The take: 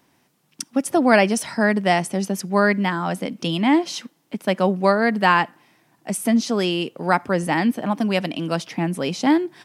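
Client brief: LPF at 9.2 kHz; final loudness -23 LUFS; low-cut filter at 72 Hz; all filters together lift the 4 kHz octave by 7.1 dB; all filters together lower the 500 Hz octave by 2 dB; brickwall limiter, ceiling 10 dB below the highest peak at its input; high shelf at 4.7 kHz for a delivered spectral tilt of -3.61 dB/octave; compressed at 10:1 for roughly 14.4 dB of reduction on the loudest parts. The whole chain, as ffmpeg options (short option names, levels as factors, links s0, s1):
-af "highpass=72,lowpass=9200,equalizer=f=500:t=o:g=-3,equalizer=f=4000:t=o:g=5.5,highshelf=f=4700:g=9,acompressor=threshold=0.0631:ratio=10,volume=2.24,alimiter=limit=0.266:level=0:latency=1"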